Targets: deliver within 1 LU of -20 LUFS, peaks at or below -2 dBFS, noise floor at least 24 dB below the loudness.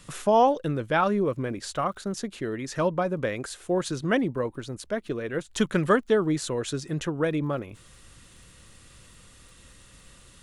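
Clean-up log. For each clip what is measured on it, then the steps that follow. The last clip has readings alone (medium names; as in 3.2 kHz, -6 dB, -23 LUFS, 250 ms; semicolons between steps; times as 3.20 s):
tick rate 36 per s; loudness -27.0 LUFS; peak level -8.0 dBFS; loudness target -20.0 LUFS
-> de-click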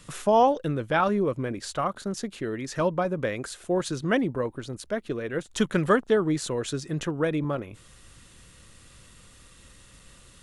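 tick rate 0 per s; loudness -27.0 LUFS; peak level -8.0 dBFS; loudness target -20.0 LUFS
-> trim +7 dB; peak limiter -2 dBFS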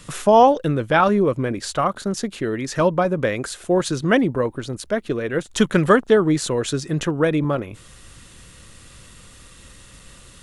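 loudness -20.0 LUFS; peak level -2.0 dBFS; noise floor -46 dBFS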